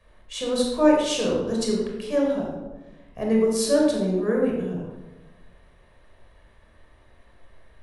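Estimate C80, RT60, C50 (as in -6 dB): 3.5 dB, 1.2 s, 1.0 dB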